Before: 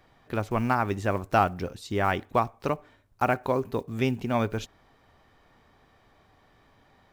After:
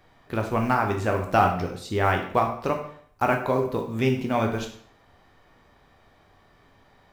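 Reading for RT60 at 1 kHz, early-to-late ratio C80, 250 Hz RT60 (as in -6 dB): 0.60 s, 10.5 dB, 0.55 s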